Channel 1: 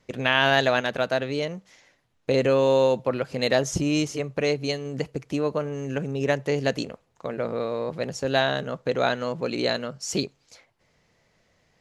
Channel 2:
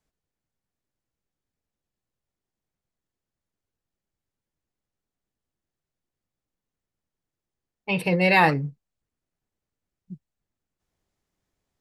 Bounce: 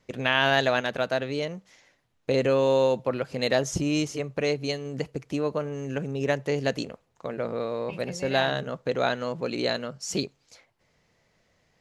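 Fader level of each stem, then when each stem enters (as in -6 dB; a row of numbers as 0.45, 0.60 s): -2.0, -18.0 dB; 0.00, 0.00 s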